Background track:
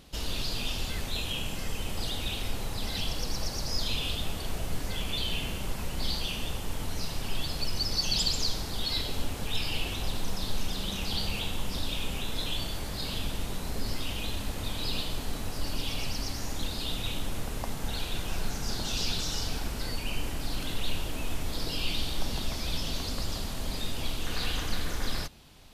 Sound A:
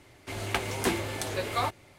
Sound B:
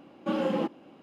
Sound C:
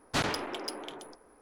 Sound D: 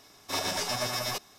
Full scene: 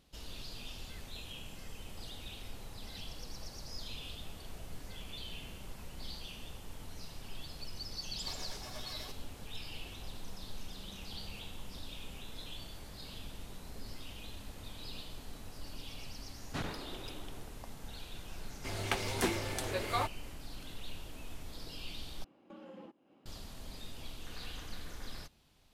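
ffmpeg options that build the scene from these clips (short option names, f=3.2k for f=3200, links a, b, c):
-filter_complex "[0:a]volume=-13.5dB[a];[4:a]aeval=exprs='sgn(val(0))*max(abs(val(0))-0.00133,0)':c=same[b];[3:a]bass=f=250:g=8,treble=f=4k:g=-5[c];[2:a]acompressor=threshold=-31dB:ratio=16:attack=0.17:release=322:knee=1:detection=rms[d];[a]asplit=2[e][f];[e]atrim=end=22.244[g];[d]atrim=end=1.02,asetpts=PTS-STARTPTS,volume=-12.5dB[h];[f]atrim=start=23.256[i];[b]atrim=end=1.38,asetpts=PTS-STARTPTS,volume=-17dB,afade=t=in:d=0.004:c=hsin,afade=t=out:st=1.376:d=0.004:c=hsin,adelay=350154S[j];[c]atrim=end=1.41,asetpts=PTS-STARTPTS,volume=-11.5dB,afade=t=in:d=0.004:c=hsin,afade=t=out:st=1.406:d=0.004:c=hsin,adelay=16400[k];[1:a]atrim=end=1.98,asetpts=PTS-STARTPTS,volume=-4.5dB,afade=t=in:d=0.004:c=hsin,afade=t=out:st=1.976:d=0.004:c=hsin,adelay=18370[l];[g][h]acrossfade=d=0.004:c1=hsin:c2=hsin[m];[m][i]acrossfade=d=0.004:c1=hsin:c2=hsin[n];[n][j][k][l]amix=inputs=4:normalize=0"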